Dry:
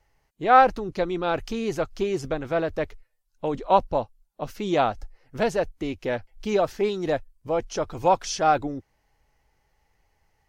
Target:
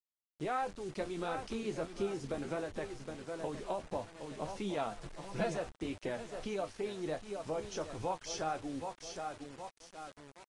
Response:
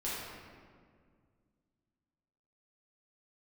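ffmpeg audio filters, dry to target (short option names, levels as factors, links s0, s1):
-filter_complex "[0:a]asettb=1/sr,asplit=3[s0][s1][s2];[s0]atrim=end=3.464[s3];[s1]atrim=start=3.46:end=3.92,asetpts=PTS-STARTPTS,afade=t=in:d=0.004:c=qsin,afade=t=out:st=0.456:d=0.004:c=qsin,acrossover=split=670|2300[s4][s5][s6];[s4]acompressor=threshold=0.0891:ratio=4[s7];[s5]acompressor=threshold=0.0316:ratio=4[s8];[s6]acompressor=threshold=0.00398:ratio=4[s9];[s7][s8][s9]amix=inputs=3:normalize=0[s10];[s2]atrim=start=3.916[s11];[s3][s10]acrossfade=d=0.004:c1=hsin:c2=qsin[s12];[s12][s11]acrossfade=d=0.004:c1=qsin:c2=hsin,acrossover=split=120|2300[s13][s14][s15];[s13]aeval=exprs='(mod(44.7*val(0)+1,2)-1)/44.7':c=same[s16];[s16][s14][s15]amix=inputs=3:normalize=0,asettb=1/sr,asplit=3[s17][s18][s19];[s17]atrim=end=1.634[s20];[s18]atrim=start=1.63:end=2.64,asetpts=PTS-STARTPTS,afade=t=in:d=0.004:c=qsin,afade=t=out:st=1.006:d=0.004:c=qsin,adynamicequalizer=threshold=0.0158:dfrequency=290:dqfactor=0.95:tfrequency=290:tqfactor=0.95:attack=5:release=100:ratio=0.375:range=2.5:mode=boostabove:tftype=bell[s21];[s19]atrim=start=2.636[s22];[s20][s21]acrossfade=d=0.004:c1=hsin:c2=qsin[s23];[s23][s22]acrossfade=d=0.004:c1=qsin:c2=hsin,asplit=2[s24][s25];[s25]aecho=0:1:766|1532|2298:0.224|0.0582|0.0151[s26];[s24][s26]amix=inputs=2:normalize=0,acompressor=threshold=0.0141:ratio=2.5,flanger=delay=9.9:depth=4.5:regen=52:speed=1.5:shape=sinusoidal,asettb=1/sr,asplit=3[s27][s28][s29];[s27]atrim=end=4.914[s30];[s28]atrim=start=4.91:end=5.57,asetpts=PTS-STARTPTS,afade=t=in:d=0.004:c=qsin,afade=t=out:st=0.656:d=0.004:c=qsin,aecho=1:1:5.9:0.9,atrim=end_sample=29106[s31];[s29]atrim=start=5.566[s32];[s30][s31]acrossfade=d=0.004:c1=hsin:c2=qsin[s33];[s33][s32]acrossfade=d=0.004:c1=qsin:c2=hsin,acrusher=bits=8:mix=0:aa=0.000001,volume=1.12" -ar 22050 -c:a aac -b:a 32k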